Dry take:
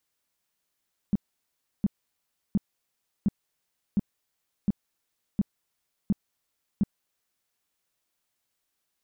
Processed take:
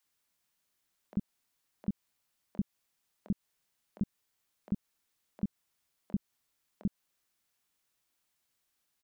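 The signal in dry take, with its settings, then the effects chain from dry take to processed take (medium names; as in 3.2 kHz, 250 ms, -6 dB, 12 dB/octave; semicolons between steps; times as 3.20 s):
tone bursts 202 Hz, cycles 5, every 0.71 s, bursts 9, -18.5 dBFS
compression, threshold -29 dBFS; bands offset in time highs, lows 40 ms, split 520 Hz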